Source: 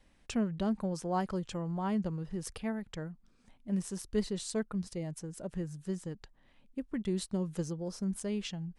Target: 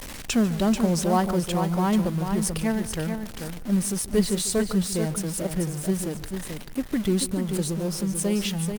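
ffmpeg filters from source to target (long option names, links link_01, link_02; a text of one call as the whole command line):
ffmpeg -i in.wav -filter_complex "[0:a]aeval=exprs='val(0)+0.5*0.00794*sgn(val(0))':channel_layout=same,asplit=2[link_01][link_02];[link_02]acrusher=bits=5:mode=log:mix=0:aa=0.000001,volume=-4dB[link_03];[link_01][link_03]amix=inputs=2:normalize=0,highshelf=frequency=4600:gain=6,asplit=2[link_04][link_05];[link_05]adelay=145.8,volume=-16dB,highshelf=frequency=4000:gain=-3.28[link_06];[link_04][link_06]amix=inputs=2:normalize=0,asettb=1/sr,asplit=3[link_07][link_08][link_09];[link_07]atrim=end=7.324[link_10];[link_08]atrim=start=7.32:end=8.19,asetpts=PTS-STARTPTS,afade=type=in:duration=0.004:curve=qsin,afade=type=out:start_time=0.866:duration=0.004:curve=qsin,acompressor=threshold=-28dB:ratio=6[link_11];[link_09]atrim=start=8.186[link_12];[link_10][link_11]acrossfade=duration=0.004:curve1=hsin:curve2=qsin[link_13];[link_13][link_12]acrossfade=duration=0.004:curve1=qsin:curve2=hsin,asplit=2[link_14][link_15];[link_15]aecho=0:1:437:0.473[link_16];[link_14][link_16]amix=inputs=2:normalize=0,volume=4.5dB" -ar 48000 -c:a libopus -b:a 48k out.opus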